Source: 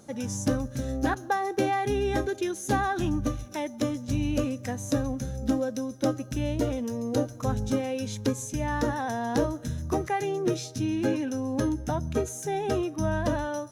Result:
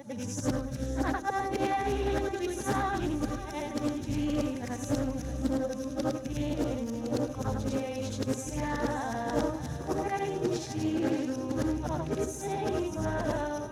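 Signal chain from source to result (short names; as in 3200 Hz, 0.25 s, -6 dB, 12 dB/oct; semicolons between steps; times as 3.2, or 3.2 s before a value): short-time reversal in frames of 0.217 s; swung echo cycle 0.957 s, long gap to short 1.5:1, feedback 43%, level -13 dB; Doppler distortion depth 0.29 ms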